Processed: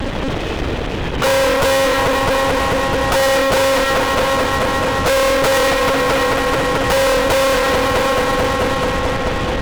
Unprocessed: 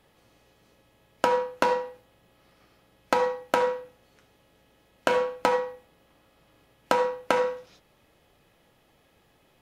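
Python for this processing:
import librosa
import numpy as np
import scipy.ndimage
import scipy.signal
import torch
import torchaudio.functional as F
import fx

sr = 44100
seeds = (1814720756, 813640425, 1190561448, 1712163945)

p1 = fx.over_compress(x, sr, threshold_db=-33.0, ratio=-1.0)
p2 = x + (p1 * 10.0 ** (-3.0 / 20.0))
p3 = fx.low_shelf(p2, sr, hz=280.0, db=11.5)
p4 = fx.hum_notches(p3, sr, base_hz=60, count=2)
p5 = fx.lpc_monotone(p4, sr, seeds[0], pitch_hz=270.0, order=16)
p6 = p5 + fx.echo_heads(p5, sr, ms=218, heads='all three', feedback_pct=59, wet_db=-19.0, dry=0)
y = fx.fuzz(p6, sr, gain_db=47.0, gate_db=-55.0)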